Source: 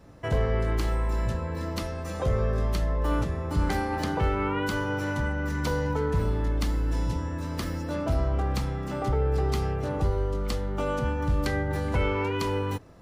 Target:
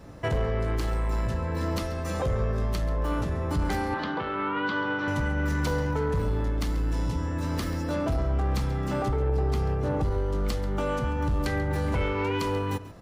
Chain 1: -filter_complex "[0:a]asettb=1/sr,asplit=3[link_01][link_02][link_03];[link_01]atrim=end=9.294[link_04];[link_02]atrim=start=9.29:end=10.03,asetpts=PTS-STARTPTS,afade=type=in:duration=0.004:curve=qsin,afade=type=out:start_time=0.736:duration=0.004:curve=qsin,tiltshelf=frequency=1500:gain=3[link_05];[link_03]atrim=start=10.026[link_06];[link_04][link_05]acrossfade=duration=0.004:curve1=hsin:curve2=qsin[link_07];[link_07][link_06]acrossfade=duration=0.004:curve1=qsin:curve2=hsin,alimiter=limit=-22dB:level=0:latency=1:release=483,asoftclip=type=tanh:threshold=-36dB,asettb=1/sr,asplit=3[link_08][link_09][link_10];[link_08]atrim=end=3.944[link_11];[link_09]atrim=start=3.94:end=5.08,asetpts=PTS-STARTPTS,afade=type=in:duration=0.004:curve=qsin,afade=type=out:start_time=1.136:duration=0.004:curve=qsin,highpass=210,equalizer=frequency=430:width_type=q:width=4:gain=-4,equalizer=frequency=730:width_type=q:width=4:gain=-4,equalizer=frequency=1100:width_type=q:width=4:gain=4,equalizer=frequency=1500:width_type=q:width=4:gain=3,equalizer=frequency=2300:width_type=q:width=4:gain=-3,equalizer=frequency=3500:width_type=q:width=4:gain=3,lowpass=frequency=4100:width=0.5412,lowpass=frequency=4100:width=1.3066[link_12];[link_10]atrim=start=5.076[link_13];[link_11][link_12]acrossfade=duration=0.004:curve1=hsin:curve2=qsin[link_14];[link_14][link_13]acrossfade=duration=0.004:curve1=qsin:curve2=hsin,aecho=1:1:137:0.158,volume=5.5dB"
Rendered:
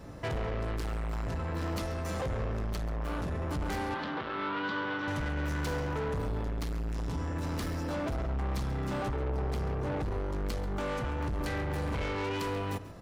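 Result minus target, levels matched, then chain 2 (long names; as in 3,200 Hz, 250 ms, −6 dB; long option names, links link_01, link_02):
soft clipping: distortion +12 dB
-filter_complex "[0:a]asettb=1/sr,asplit=3[link_01][link_02][link_03];[link_01]atrim=end=9.294[link_04];[link_02]atrim=start=9.29:end=10.03,asetpts=PTS-STARTPTS,afade=type=in:duration=0.004:curve=qsin,afade=type=out:start_time=0.736:duration=0.004:curve=qsin,tiltshelf=frequency=1500:gain=3[link_05];[link_03]atrim=start=10.026[link_06];[link_04][link_05]acrossfade=duration=0.004:curve1=hsin:curve2=qsin[link_07];[link_07][link_06]acrossfade=duration=0.004:curve1=qsin:curve2=hsin,alimiter=limit=-22dB:level=0:latency=1:release=483,asoftclip=type=tanh:threshold=-24.5dB,asettb=1/sr,asplit=3[link_08][link_09][link_10];[link_08]atrim=end=3.944[link_11];[link_09]atrim=start=3.94:end=5.08,asetpts=PTS-STARTPTS,afade=type=in:duration=0.004:curve=qsin,afade=type=out:start_time=1.136:duration=0.004:curve=qsin,highpass=210,equalizer=frequency=430:width_type=q:width=4:gain=-4,equalizer=frequency=730:width_type=q:width=4:gain=-4,equalizer=frequency=1100:width_type=q:width=4:gain=4,equalizer=frequency=1500:width_type=q:width=4:gain=3,equalizer=frequency=2300:width_type=q:width=4:gain=-3,equalizer=frequency=3500:width_type=q:width=4:gain=3,lowpass=frequency=4100:width=0.5412,lowpass=frequency=4100:width=1.3066[link_12];[link_10]atrim=start=5.076[link_13];[link_11][link_12]acrossfade=duration=0.004:curve1=hsin:curve2=qsin[link_14];[link_14][link_13]acrossfade=duration=0.004:curve1=qsin:curve2=hsin,aecho=1:1:137:0.158,volume=5.5dB"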